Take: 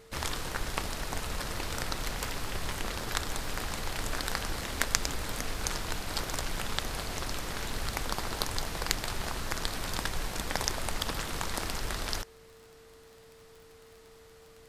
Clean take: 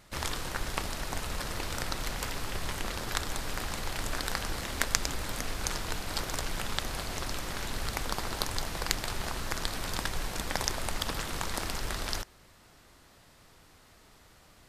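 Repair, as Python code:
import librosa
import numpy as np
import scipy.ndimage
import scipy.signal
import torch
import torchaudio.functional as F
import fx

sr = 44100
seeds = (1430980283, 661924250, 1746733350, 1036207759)

y = fx.fix_declick_ar(x, sr, threshold=6.5)
y = fx.notch(y, sr, hz=450.0, q=30.0)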